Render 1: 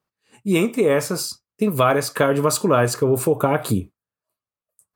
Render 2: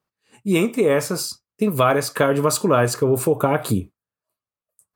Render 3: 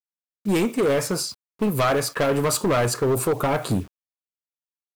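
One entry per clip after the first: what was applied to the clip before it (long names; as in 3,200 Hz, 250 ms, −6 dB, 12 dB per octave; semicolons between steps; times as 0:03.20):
no processing that can be heard
hard clipping −17 dBFS, distortion −9 dB; low-pass that shuts in the quiet parts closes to 330 Hz, open at −20.5 dBFS; bit reduction 8 bits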